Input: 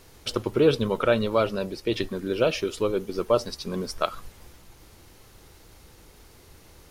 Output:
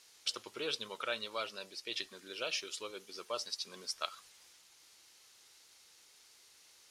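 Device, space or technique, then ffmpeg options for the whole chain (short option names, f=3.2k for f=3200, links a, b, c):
piezo pickup straight into a mixer: -af "lowpass=6.1k,aderivative,volume=2.5dB"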